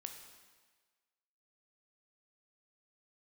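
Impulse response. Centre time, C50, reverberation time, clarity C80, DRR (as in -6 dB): 31 ms, 6.5 dB, 1.4 s, 8.0 dB, 4.5 dB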